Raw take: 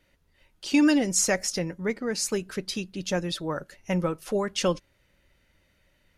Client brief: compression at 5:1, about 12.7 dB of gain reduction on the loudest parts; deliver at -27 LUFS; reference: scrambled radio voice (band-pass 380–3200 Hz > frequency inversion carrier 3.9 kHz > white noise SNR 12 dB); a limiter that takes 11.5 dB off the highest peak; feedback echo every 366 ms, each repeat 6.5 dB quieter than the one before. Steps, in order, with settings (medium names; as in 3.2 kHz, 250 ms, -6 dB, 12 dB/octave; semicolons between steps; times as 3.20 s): compression 5:1, threshold -31 dBFS; peak limiter -30.5 dBFS; band-pass 380–3200 Hz; feedback delay 366 ms, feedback 47%, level -6.5 dB; frequency inversion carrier 3.9 kHz; white noise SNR 12 dB; trim +14 dB